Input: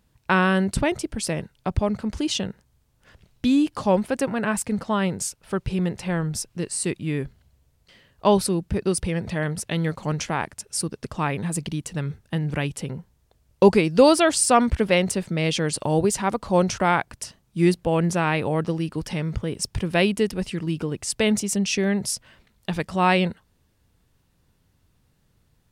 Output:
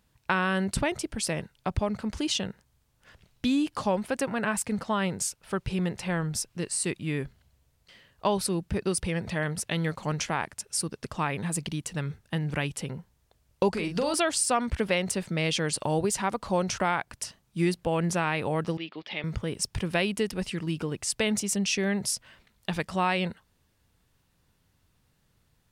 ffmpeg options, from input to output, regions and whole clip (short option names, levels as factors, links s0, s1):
-filter_complex "[0:a]asettb=1/sr,asplit=3[s0][s1][s2];[s0]atrim=end=13.714[s3];[s1]atrim=start=13.71:end=14.14,asetpts=PTS-STARTPTS,afade=t=in:d=0.004:c=qsin,afade=t=out:st=0.426:d=0.004:c=qsin,acompressor=threshold=0.1:ratio=5:attack=3.2:release=140:knee=1:detection=peak,aeval=exprs='val(0)+0.00282*(sin(2*PI*50*n/s)+sin(2*PI*2*50*n/s)/2+sin(2*PI*3*50*n/s)/3+sin(2*PI*4*50*n/s)/4+sin(2*PI*5*50*n/s)/5)':c=same,asplit=2[s4][s5];[s5]adelay=41,volume=0.447[s6];[s4][s6]amix=inputs=2:normalize=0,atrim=end_sample=18963[s7];[s2]atrim=start=14.136[s8];[s3][s7]acrossfade=d=0.004:c1=hsin:c2=qsin[s9];[s9][s8]acrossfade=d=0.004:c1=qsin:c2=hsin,asettb=1/sr,asplit=3[s10][s11][s12];[s10]atrim=end=18.774[s13];[s11]atrim=start=18.77:end=19.24,asetpts=PTS-STARTPTS,afade=t=in:d=0.004:c=qsin,afade=t=out:st=0.466:d=0.004:c=qsin,deesser=0.75,highpass=390,equalizer=f=490:t=q:w=4:g=-5,equalizer=f=1000:t=q:w=4:g=-6,equalizer=f=1500:t=q:w=4:g=-7,equalizer=f=2200:t=q:w=4:g=4,equalizer=f=3500:t=q:w=4:g=7,lowpass=f=3800:w=0.5412,lowpass=f=3800:w=1.3066[s14];[s12]atrim=start=19.236[s15];[s13][s14]acrossfade=d=0.004:c1=hsin:c2=qsin[s16];[s16][s15]acrossfade=d=0.004:c1=qsin:c2=hsin,lowshelf=f=350:g=-11.5,acompressor=threshold=0.0631:ratio=2.5,bass=f=250:g=6,treble=f=4000:g=-1"